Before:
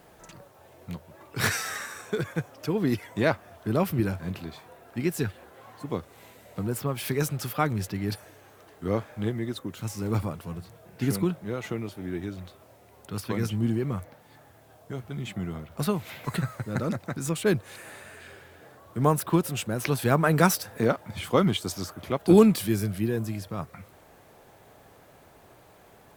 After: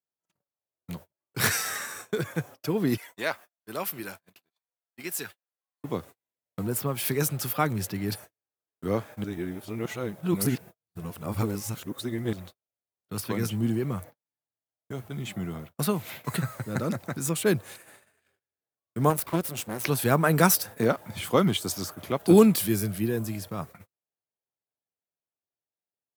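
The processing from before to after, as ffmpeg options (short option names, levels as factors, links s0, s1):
-filter_complex "[0:a]asettb=1/sr,asplit=3[s0][s1][s2];[s0]atrim=end=2.974[s3];[s1]atrim=start=2.97:end=5.84,asetpts=PTS-STARTPTS,afade=t=in:d=0.004:c=qsin,afade=t=out:st=2.866:d=0.004:c=qsin,highpass=f=1200:p=1[s4];[s2]atrim=start=5.836[s5];[s3][s4]acrossfade=d=0.004:c1=hsin:c2=qsin[s6];[s6][s5]acrossfade=d=0.004:c1=qsin:c2=hsin,asettb=1/sr,asplit=3[s7][s8][s9];[s7]atrim=end=19.104[s10];[s8]atrim=start=19.1:end=19.84,asetpts=PTS-STARTPTS,afade=t=in:d=0.004:c=qsin,afade=t=out:st=0.736:d=0.004:c=qsin,aeval=exprs='max(val(0),0)':c=same[s11];[s9]atrim=start=19.836[s12];[s10][s11]acrossfade=d=0.004:c1=hsin:c2=qsin[s13];[s13][s12]acrossfade=d=0.004:c1=qsin:c2=hsin,asplit=3[s14][s15][s16];[s14]atrim=end=9.242[s17];[s15]atrim=start=9.238:end=12.332,asetpts=PTS-STARTPTS,areverse[s18];[s16]atrim=start=12.328[s19];[s17][s18]acrossfade=d=0.004:c1=hsin:c2=hsin[s20];[s20][s19]acrossfade=d=0.004:c1=hsin:c2=hsin,agate=range=0.00398:threshold=0.00794:ratio=16:detection=peak,highpass=90,highshelf=f=8600:g=9.5"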